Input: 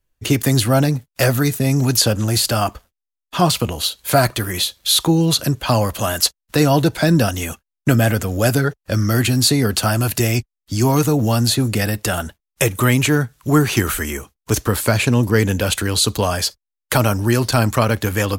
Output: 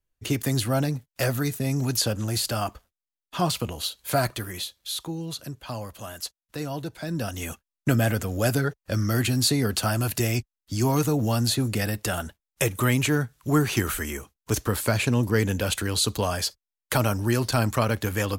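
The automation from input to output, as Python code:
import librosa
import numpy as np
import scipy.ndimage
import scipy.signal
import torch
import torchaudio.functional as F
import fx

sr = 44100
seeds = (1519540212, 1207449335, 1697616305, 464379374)

y = fx.gain(x, sr, db=fx.line((4.28, -9.0), (5.08, -17.5), (7.05, -17.5), (7.48, -7.0)))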